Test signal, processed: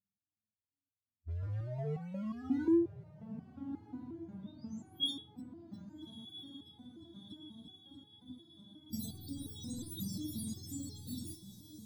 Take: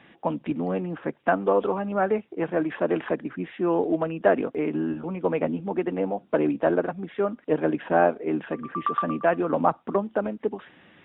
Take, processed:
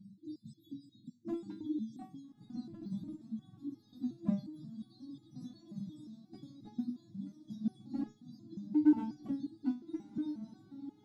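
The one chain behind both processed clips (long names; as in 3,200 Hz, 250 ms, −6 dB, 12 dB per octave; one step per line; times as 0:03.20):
frequency axis turned over on the octave scale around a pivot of 590 Hz
brick-wall band-stop 340–3,300 Hz
in parallel at −8.5 dB: wave folding −28.5 dBFS
on the sum: feedback delay with all-pass diffusion 1,293 ms, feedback 66%, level −13.5 dB
step-sequenced resonator 5.6 Hz 200–420 Hz
level +8.5 dB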